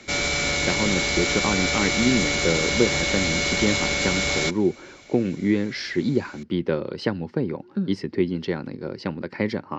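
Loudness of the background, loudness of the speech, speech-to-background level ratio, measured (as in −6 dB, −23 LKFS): −22.0 LKFS, −26.0 LKFS, −4.0 dB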